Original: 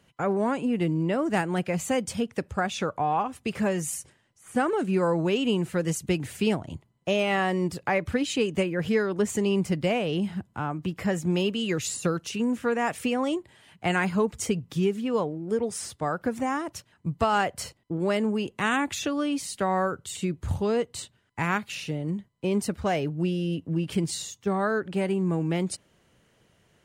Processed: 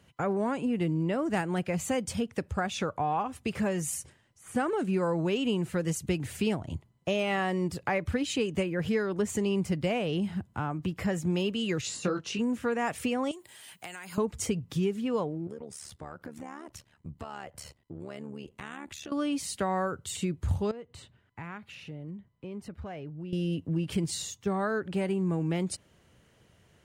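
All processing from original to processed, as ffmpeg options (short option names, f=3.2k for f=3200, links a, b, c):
-filter_complex "[0:a]asettb=1/sr,asplit=3[a][b][c];[a]atrim=end=11.814[d];[b]atrim=start=11.81:end=12.39,asetpts=PTS-STARTPTS,afade=t=in:d=0.004:c=qsin,afade=t=out:st=0.576:d=0.004:c=qsin,highpass=140,lowpass=5.9k,asplit=2[e][f];[f]adelay=21,volume=-5dB[g];[e][g]amix=inputs=2:normalize=0,atrim=end_sample=25578[h];[c]atrim=start=12.386[i];[d][h]acrossfade=d=0.004:c1=hsin:c2=qsin[j];[j][i]acrossfade=d=0.004:c1=qsin:c2=hsin,asettb=1/sr,asplit=3[k][l][m];[k]atrim=end=13.314[n];[l]atrim=start=13.31:end=14.18,asetpts=PTS-STARTPTS,afade=t=in:d=0.004:c=qsin,afade=t=out:st=0.866:d=0.004:c=qsin,aemphasis=mode=production:type=riaa,acompressor=threshold=-38dB:ratio=16:attack=3.2:release=140:knee=1:detection=peak[o];[m]atrim=start=14.176[p];[n][o]acrossfade=d=0.004:c1=hsin:c2=qsin[q];[q][p]acrossfade=d=0.004:c1=qsin:c2=hsin,asettb=1/sr,asplit=3[r][s][t];[r]atrim=end=15.474[u];[s]atrim=start=15.47:end=19.12,asetpts=PTS-STARTPTS,afade=t=in:d=0.004:c=qsin,afade=t=out:st=3.646:d=0.004:c=qsin,tremolo=f=73:d=0.824,acompressor=threshold=-42dB:ratio=3:attack=3.2:release=140:knee=1:detection=peak[v];[t]atrim=start=19.116[w];[u][v]acrossfade=d=0.004:c1=hsin:c2=qsin[x];[x][w]acrossfade=d=0.004:c1=qsin:c2=hsin,asettb=1/sr,asplit=3[y][z][aa];[y]atrim=end=20.714[ab];[z]atrim=start=20.71:end=23.33,asetpts=PTS-STARTPTS,afade=t=in:d=0.004:c=qsin,afade=t=out:st=2.616:d=0.004:c=qsin,bass=f=250:g=1,treble=f=4k:g=-12,acompressor=threshold=-50dB:ratio=2:attack=3.2:release=140:knee=1:detection=peak[ac];[aa]atrim=start=23.326[ad];[ab][ac]acrossfade=d=0.004:c1=hsin:c2=qsin[ae];[ae][ad]acrossfade=d=0.004:c1=qsin:c2=hsin,equalizer=f=77:w=1.1:g=6,acompressor=threshold=-32dB:ratio=1.5"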